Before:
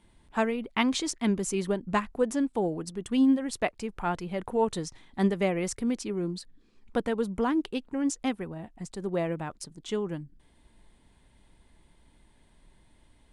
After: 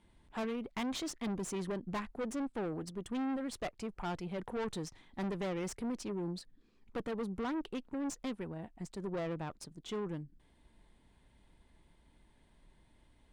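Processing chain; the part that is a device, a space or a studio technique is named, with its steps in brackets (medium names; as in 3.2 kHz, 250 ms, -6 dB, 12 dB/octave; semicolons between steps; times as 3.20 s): tube preamp driven hard (valve stage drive 31 dB, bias 0.45; treble shelf 6.3 kHz -6.5 dB); trim -2.5 dB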